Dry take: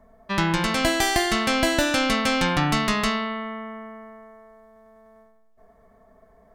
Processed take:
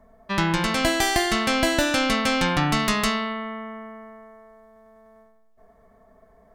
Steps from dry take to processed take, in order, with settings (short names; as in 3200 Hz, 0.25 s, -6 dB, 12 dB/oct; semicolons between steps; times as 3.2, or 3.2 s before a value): 2.79–3.33 high shelf 8300 Hz +9.5 dB